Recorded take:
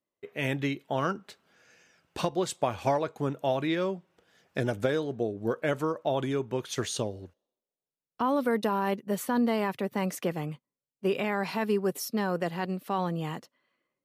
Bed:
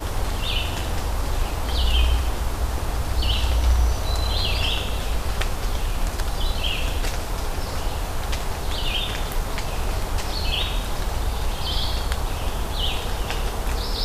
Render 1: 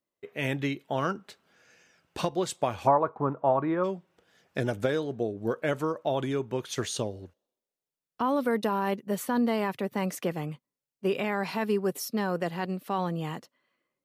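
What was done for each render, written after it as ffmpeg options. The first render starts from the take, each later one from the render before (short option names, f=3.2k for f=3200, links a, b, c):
-filter_complex "[0:a]asplit=3[a][b][c];[a]afade=t=out:st=2.86:d=0.02[d];[b]lowpass=f=1.1k:t=q:w=3.3,afade=t=in:st=2.86:d=0.02,afade=t=out:st=3.83:d=0.02[e];[c]afade=t=in:st=3.83:d=0.02[f];[d][e][f]amix=inputs=3:normalize=0"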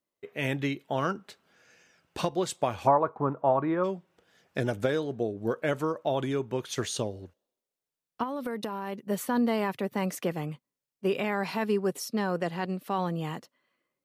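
-filter_complex "[0:a]asettb=1/sr,asplit=3[a][b][c];[a]atrim=end=8.234[d];[b]atrim=start=8.23:end=9.02,asetpts=PTS-STARTPTS,afade=t=in:d=0.004:c=qsin,afade=t=out:st=0.786:d=0.004:c=qsin,acompressor=threshold=-29dB:ratio=6:attack=3.2:release=140:knee=1:detection=peak[e];[c]atrim=start=9.016[f];[d][e]acrossfade=d=0.004:c1=hsin:c2=qsin[g];[g][f]acrossfade=d=0.004:c1=qsin:c2=hsin,asettb=1/sr,asplit=3[h][i][j];[h]atrim=end=11.644[k];[i]atrim=start=11.64:end=12.81,asetpts=PTS-STARTPTS,afade=t=in:d=0.004:c=qsin,afade=t=out:st=1.166:d=0.004:c=qsin,lowpass=11k[l];[j]atrim=start=12.806[m];[k][l]acrossfade=d=0.004:c1=hsin:c2=qsin[n];[n][m]acrossfade=d=0.004:c1=qsin:c2=hsin"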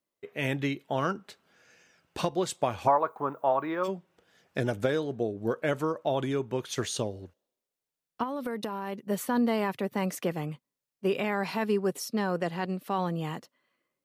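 -filter_complex "[0:a]asplit=3[a][b][c];[a]afade=t=out:st=2.87:d=0.02[d];[b]aemphasis=mode=production:type=riaa,afade=t=in:st=2.87:d=0.02,afade=t=out:st=3.87:d=0.02[e];[c]afade=t=in:st=3.87:d=0.02[f];[d][e][f]amix=inputs=3:normalize=0"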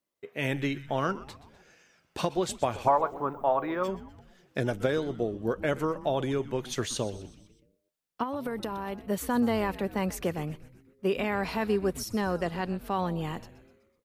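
-filter_complex "[0:a]asplit=6[a][b][c][d][e][f];[b]adelay=125,afreqshift=-140,volume=-16.5dB[g];[c]adelay=250,afreqshift=-280,volume=-21.7dB[h];[d]adelay=375,afreqshift=-420,volume=-26.9dB[i];[e]adelay=500,afreqshift=-560,volume=-32.1dB[j];[f]adelay=625,afreqshift=-700,volume=-37.3dB[k];[a][g][h][i][j][k]amix=inputs=6:normalize=0"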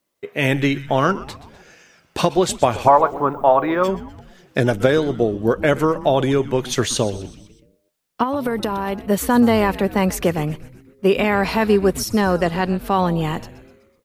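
-af "volume=11.5dB,alimiter=limit=-1dB:level=0:latency=1"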